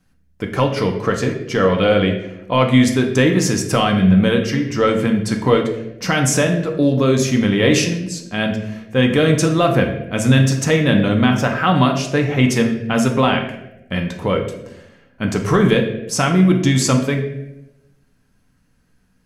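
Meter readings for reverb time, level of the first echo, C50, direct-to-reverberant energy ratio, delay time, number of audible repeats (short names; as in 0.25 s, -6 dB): 0.95 s, none, 7.5 dB, 2.5 dB, none, none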